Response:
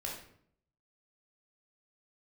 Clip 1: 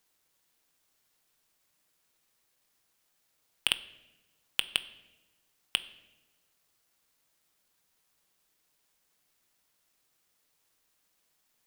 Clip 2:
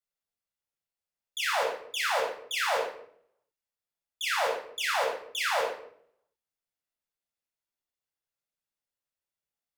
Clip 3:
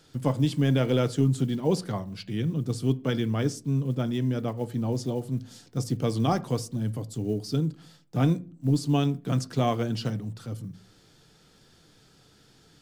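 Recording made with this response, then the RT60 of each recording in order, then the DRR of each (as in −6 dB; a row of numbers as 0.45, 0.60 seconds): 2; 1.1, 0.65, 0.40 seconds; 11.5, −2.5, 12.0 decibels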